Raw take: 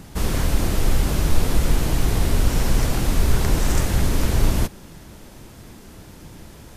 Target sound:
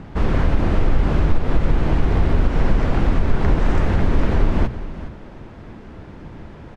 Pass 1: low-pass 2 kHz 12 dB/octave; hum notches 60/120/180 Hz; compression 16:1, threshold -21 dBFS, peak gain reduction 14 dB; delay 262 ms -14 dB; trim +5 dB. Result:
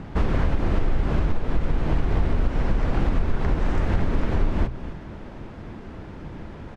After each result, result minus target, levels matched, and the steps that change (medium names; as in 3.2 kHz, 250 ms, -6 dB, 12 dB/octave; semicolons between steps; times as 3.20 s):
echo 153 ms early; compression: peak gain reduction +6 dB
change: delay 415 ms -14 dB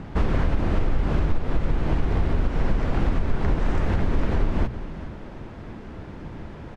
compression: peak gain reduction +6 dB
change: compression 16:1, threshold -14.5 dBFS, peak gain reduction 8 dB